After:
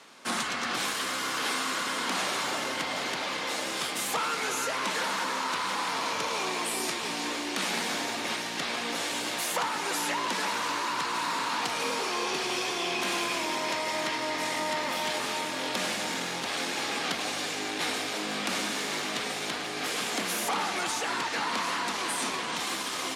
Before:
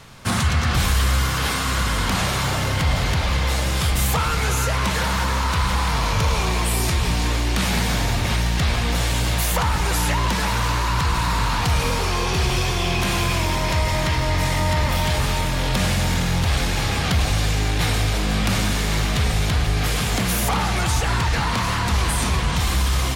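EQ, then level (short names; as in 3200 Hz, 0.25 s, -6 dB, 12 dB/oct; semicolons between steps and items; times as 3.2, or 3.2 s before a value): Chebyshev high-pass 270 Hz, order 3; LPF 11000 Hz 12 dB/oct; -5.5 dB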